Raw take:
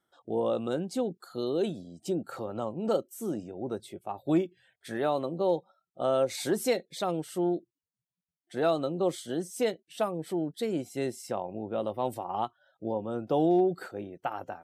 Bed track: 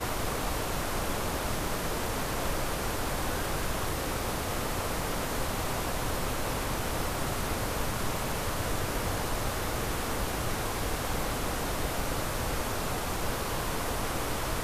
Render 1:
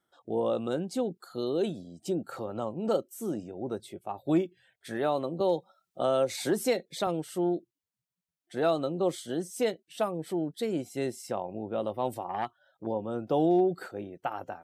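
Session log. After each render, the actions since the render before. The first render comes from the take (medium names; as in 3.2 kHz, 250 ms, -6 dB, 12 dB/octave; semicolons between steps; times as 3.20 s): 5.40–7.07 s: three bands compressed up and down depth 40%; 12.29–12.87 s: transformer saturation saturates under 790 Hz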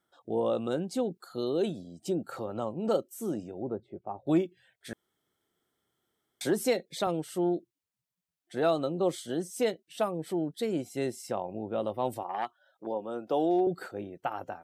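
3.62–4.27 s: low-pass 1 kHz; 4.93–6.41 s: room tone; 12.23–13.67 s: Bessel high-pass 330 Hz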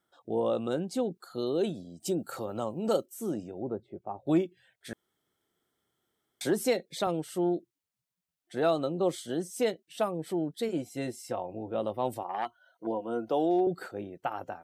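2.00–3.06 s: treble shelf 5.3 kHz +11 dB; 10.68–11.75 s: comb of notches 200 Hz; 12.45–13.29 s: rippled EQ curve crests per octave 1.9, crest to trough 12 dB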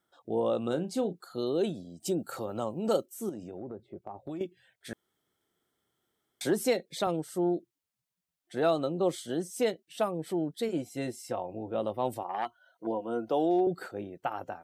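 0.58–1.22 s: doubling 34 ms -12 dB; 3.29–4.41 s: compression, threshold -36 dBFS; 7.16–7.57 s: peaking EQ 2.8 kHz -10.5 dB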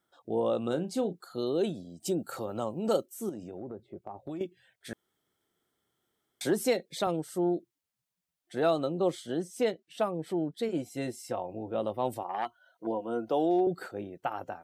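9.10–10.75 s: treble shelf 6.5 kHz -8 dB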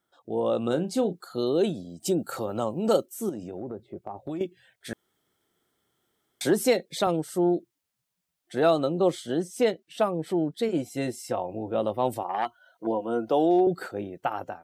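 level rider gain up to 5 dB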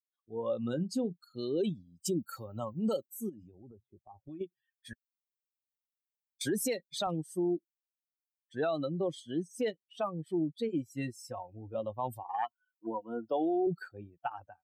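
expander on every frequency bin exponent 2; peak limiter -23.5 dBFS, peak gain reduction 11 dB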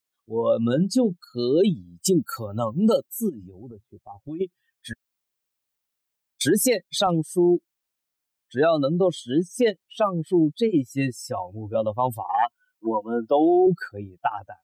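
trim +12 dB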